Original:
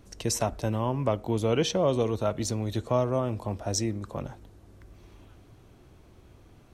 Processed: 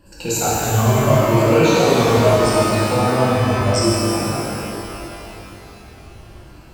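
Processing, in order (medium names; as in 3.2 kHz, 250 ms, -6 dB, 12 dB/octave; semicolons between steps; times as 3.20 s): drifting ripple filter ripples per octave 1.3, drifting -0.78 Hz, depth 18 dB; pitch-shifted reverb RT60 3.1 s, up +12 st, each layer -8 dB, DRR -8.5 dB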